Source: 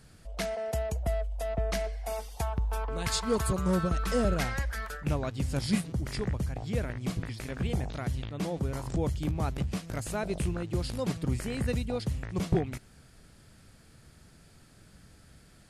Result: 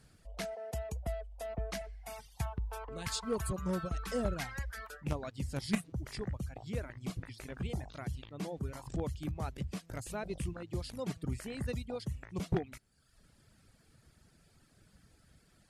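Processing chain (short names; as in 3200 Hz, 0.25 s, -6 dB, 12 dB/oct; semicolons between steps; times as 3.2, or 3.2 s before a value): reverb removal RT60 0.88 s; added harmonics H 3 -10 dB, 5 -17 dB, 7 -31 dB, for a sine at -16.5 dBFS; 1.81–2.46 graphic EQ 125/500/2000 Hz +9/-10/+4 dB; gain -1 dB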